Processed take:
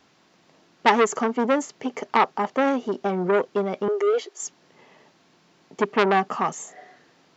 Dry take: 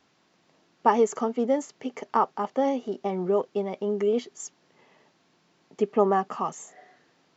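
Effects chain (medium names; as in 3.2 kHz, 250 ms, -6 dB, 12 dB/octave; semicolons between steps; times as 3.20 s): 3.88–4.42 s: elliptic high-pass 330 Hz, stop band 40 dB; transformer saturation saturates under 2.1 kHz; trim +6 dB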